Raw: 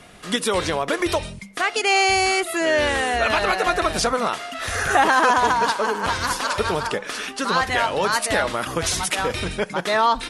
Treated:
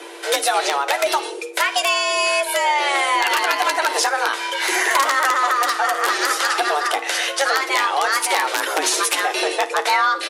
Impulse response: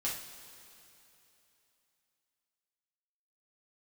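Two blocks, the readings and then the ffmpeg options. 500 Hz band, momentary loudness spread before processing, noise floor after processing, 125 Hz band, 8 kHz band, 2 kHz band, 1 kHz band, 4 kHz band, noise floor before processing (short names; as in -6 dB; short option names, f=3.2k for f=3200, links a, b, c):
-1.0 dB, 9 LU, -30 dBFS, under -40 dB, +4.5 dB, +3.0 dB, +2.0 dB, +4.0 dB, -38 dBFS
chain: -filter_complex "[0:a]highpass=f=90:p=1,acompressor=threshold=-25dB:ratio=4,aeval=exprs='(mod(6.68*val(0)+1,2)-1)/6.68':c=same,aeval=exprs='val(0)+0.00447*(sin(2*PI*60*n/s)+sin(2*PI*2*60*n/s)/2+sin(2*PI*3*60*n/s)/3+sin(2*PI*4*60*n/s)/4+sin(2*PI*5*60*n/s)/5)':c=same,aecho=1:1:11|55:0.355|0.126,afreqshift=280,asplit=2[a][b];[1:a]atrim=start_sample=2205,atrim=end_sample=6174,asetrate=25137,aresample=44100[c];[b][c]afir=irnorm=-1:irlink=0,volume=-24dB[d];[a][d]amix=inputs=2:normalize=0,aresample=32000,aresample=44100,volume=7.5dB"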